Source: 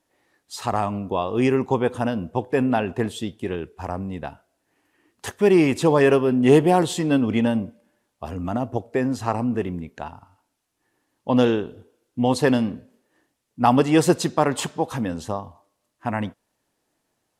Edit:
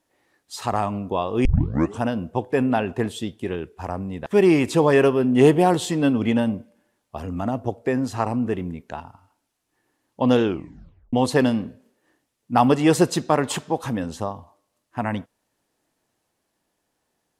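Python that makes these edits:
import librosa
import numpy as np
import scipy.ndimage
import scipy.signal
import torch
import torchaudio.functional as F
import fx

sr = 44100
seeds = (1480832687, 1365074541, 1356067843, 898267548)

y = fx.edit(x, sr, fx.tape_start(start_s=1.45, length_s=0.56),
    fx.cut(start_s=4.26, length_s=1.08),
    fx.tape_stop(start_s=11.52, length_s=0.69), tone=tone)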